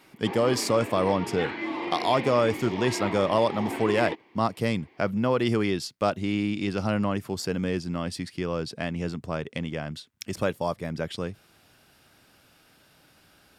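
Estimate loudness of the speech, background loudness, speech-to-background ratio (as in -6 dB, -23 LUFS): -27.5 LUFS, -34.0 LUFS, 6.5 dB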